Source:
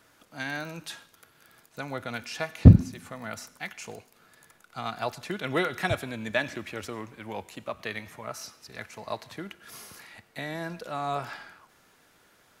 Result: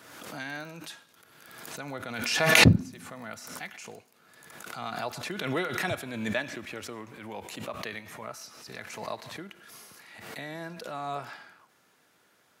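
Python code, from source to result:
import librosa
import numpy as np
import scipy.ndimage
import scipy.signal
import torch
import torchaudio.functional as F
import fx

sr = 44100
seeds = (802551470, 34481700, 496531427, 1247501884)

y = scipy.signal.sosfilt(scipy.signal.butter(2, 120.0, 'highpass', fs=sr, output='sos'), x)
y = fx.pre_swell(y, sr, db_per_s=42.0)
y = F.gain(torch.from_numpy(y), -4.0).numpy()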